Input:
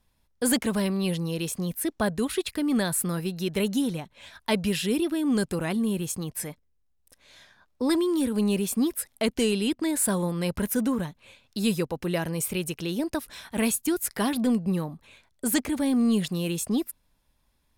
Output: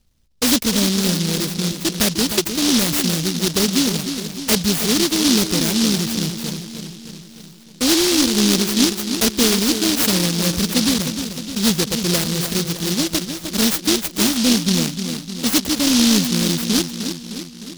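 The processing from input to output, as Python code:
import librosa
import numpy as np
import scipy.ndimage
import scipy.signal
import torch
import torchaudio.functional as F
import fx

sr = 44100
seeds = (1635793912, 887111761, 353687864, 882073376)

p1 = fx.env_lowpass(x, sr, base_hz=1600.0, full_db=-22.5)
p2 = p1 + fx.echo_filtered(p1, sr, ms=306, feedback_pct=61, hz=1300.0, wet_db=-8.0, dry=0)
p3 = fx.noise_mod_delay(p2, sr, seeds[0], noise_hz=4400.0, depth_ms=0.36)
y = F.gain(torch.from_numpy(p3), 7.5).numpy()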